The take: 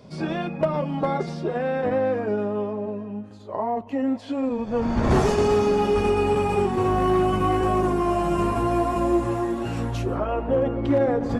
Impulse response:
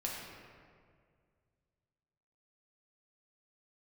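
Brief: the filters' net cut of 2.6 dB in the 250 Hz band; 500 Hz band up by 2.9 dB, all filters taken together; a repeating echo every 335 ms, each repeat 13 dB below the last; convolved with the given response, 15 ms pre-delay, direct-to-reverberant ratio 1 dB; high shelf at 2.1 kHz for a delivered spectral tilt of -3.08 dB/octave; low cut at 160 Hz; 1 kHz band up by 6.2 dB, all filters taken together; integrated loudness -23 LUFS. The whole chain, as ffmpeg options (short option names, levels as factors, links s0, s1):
-filter_complex "[0:a]highpass=160,equalizer=f=250:t=o:g=-5.5,equalizer=f=500:t=o:g=4,equalizer=f=1000:t=o:g=8,highshelf=f=2100:g=-5,aecho=1:1:335|670|1005:0.224|0.0493|0.0108,asplit=2[s0][s1];[1:a]atrim=start_sample=2205,adelay=15[s2];[s1][s2]afir=irnorm=-1:irlink=0,volume=0.668[s3];[s0][s3]amix=inputs=2:normalize=0,volume=0.562"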